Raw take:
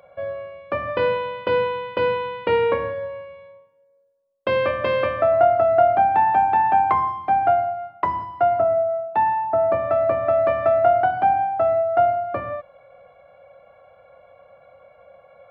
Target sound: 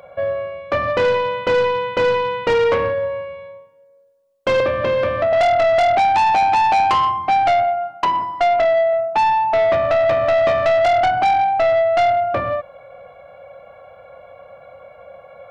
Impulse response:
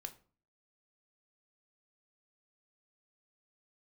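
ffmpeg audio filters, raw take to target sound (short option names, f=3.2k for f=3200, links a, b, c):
-filter_complex "[0:a]asettb=1/sr,asplit=3[a][b][c];[a]atrim=end=4.604[d];[b]atrim=start=4.6:end=5.33,asetpts=PTS-STARTPTS,afade=t=in:d=0.004:c=qsin,afade=t=out:st=0.726:d=0.004:c=qsin,acrossover=split=570|3800[e][f][g];[e]acompressor=threshold=-23dB:ratio=4[h];[f]acompressor=threshold=-30dB:ratio=4[i];[g]acompressor=threshold=-50dB:ratio=4[j];[h][i][j]amix=inputs=3:normalize=0[k];[c]atrim=start=5.326[l];[d][k]acrossfade=d=0.004:c1=hsin:c2=qsin[m];[m][l]acrossfade=d=0.004:c1=qsin:c2=hsin,asettb=1/sr,asplit=3[n][o][p];[n]atrim=end=7.634[q];[o]atrim=start=7.63:end=8.93,asetpts=PTS-STARTPTS,afade=t=in:d=0.004:c=qsin,afade=t=out:st=1.296:d=0.004:c=qsin,highpass=180[r];[p]atrim=start=8.926[s];[q][r]acrossfade=d=0.004:c1=hsin:c2=qsin[t];[t][s]acrossfade=d=0.004:c1=qsin:c2=hsin,asoftclip=type=tanh:threshold=-21dB,volume=8.5dB"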